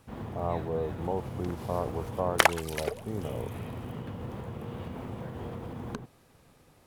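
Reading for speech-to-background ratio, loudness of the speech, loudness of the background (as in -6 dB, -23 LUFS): 0.0 dB, -35.0 LUFS, -35.0 LUFS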